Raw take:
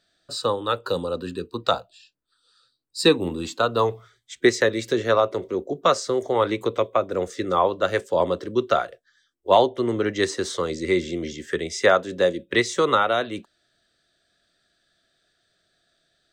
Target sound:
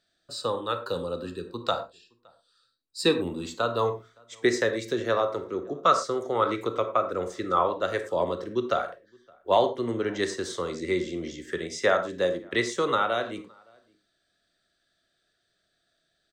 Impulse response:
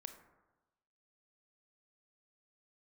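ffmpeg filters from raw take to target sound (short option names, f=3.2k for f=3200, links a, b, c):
-filter_complex "[0:a]asettb=1/sr,asplit=3[a][b][c];[a]atrim=end=5.254[d];[b]atrim=start=5.25:end=7.65,asetpts=PTS-STARTPTS,afade=t=in:d=0.004:c=qsin,afade=t=out:st=2.396:d=0.004:c=qsin,equalizer=f=1.3k:w=6.8:g=11[e];[c]atrim=start=7.646[f];[d][e]acrossfade=d=0.004:c1=hsin:c2=qsin[g];[g][f]acrossfade=d=0.004:c1=qsin:c2=hsin,asplit=2[h][i];[i]adelay=565.6,volume=-29dB,highshelf=f=4k:g=-12.7[j];[h][j]amix=inputs=2:normalize=0[k];[1:a]atrim=start_sample=2205,afade=t=out:st=0.17:d=0.01,atrim=end_sample=7938[l];[k][l]afir=irnorm=-1:irlink=0"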